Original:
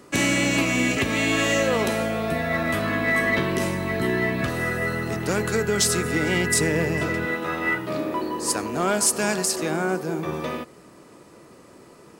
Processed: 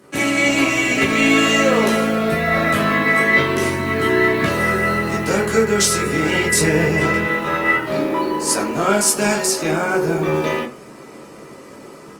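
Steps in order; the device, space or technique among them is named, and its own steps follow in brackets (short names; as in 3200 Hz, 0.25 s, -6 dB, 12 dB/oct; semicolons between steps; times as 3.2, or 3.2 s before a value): far-field microphone of a smart speaker (reverb RT60 0.30 s, pre-delay 12 ms, DRR -3.5 dB; HPF 100 Hz 12 dB/oct; AGC gain up to 7 dB; gain -1.5 dB; Opus 32 kbps 48000 Hz)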